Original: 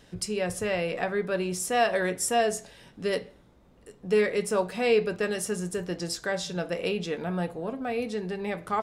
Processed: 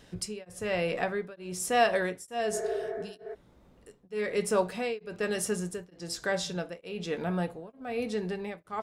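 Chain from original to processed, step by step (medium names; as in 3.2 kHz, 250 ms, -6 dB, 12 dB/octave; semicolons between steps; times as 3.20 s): spectral replace 2.56–3.32 s, 380–2400 Hz before; tremolo of two beating tones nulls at 1.1 Hz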